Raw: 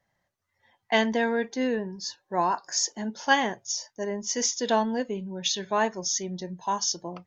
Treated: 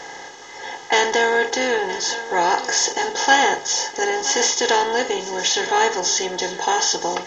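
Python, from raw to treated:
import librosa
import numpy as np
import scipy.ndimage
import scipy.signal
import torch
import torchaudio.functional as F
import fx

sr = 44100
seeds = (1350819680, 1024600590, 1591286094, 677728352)

y = fx.bin_compress(x, sr, power=0.4)
y = y + 0.95 * np.pad(y, (int(2.4 * sr / 1000.0), 0))[:len(y)]
y = y + 10.0 ** (-14.5 / 20.0) * np.pad(y, (int(967 * sr / 1000.0), 0))[:len(y)]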